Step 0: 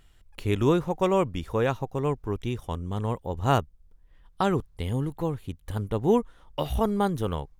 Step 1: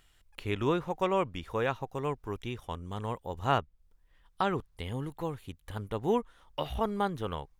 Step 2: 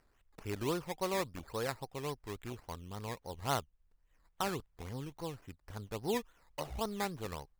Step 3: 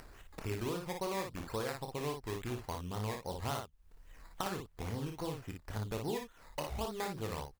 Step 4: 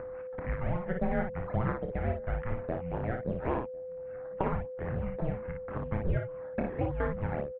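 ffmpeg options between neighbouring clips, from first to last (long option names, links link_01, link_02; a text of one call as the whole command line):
ffmpeg -i in.wav -filter_complex "[0:a]tiltshelf=frequency=640:gain=-4.5,acrossover=split=3900[link_01][link_02];[link_02]acompressor=threshold=-54dB:ratio=6[link_03];[link_01][link_03]amix=inputs=2:normalize=0,volume=-4.5dB" out.wav
ffmpeg -i in.wav -af "acrusher=samples=12:mix=1:aa=0.000001:lfo=1:lforange=7.2:lforate=3.6,volume=-6.5dB" out.wav
ffmpeg -i in.wav -filter_complex "[0:a]acompressor=threshold=-41dB:ratio=6,asplit=2[link_01][link_02];[link_02]aecho=0:1:27|57:0.398|0.562[link_03];[link_01][link_03]amix=inputs=2:normalize=0,acompressor=mode=upward:threshold=-49dB:ratio=2.5,volume=5.5dB" out.wav
ffmpeg -i in.wav -filter_complex "[0:a]highpass=frequency=170:width_type=q:width=0.5412,highpass=frequency=170:width_type=q:width=1.307,lowpass=frequency=2300:width_type=q:width=0.5176,lowpass=frequency=2300:width_type=q:width=0.7071,lowpass=frequency=2300:width_type=q:width=1.932,afreqshift=-350,asplit=2[link_01][link_02];[link_02]adelay=1050,volume=-25dB,highshelf=frequency=4000:gain=-23.6[link_03];[link_01][link_03]amix=inputs=2:normalize=0,aeval=exprs='val(0)+0.00501*sin(2*PI*510*n/s)':channel_layout=same,volume=8dB" out.wav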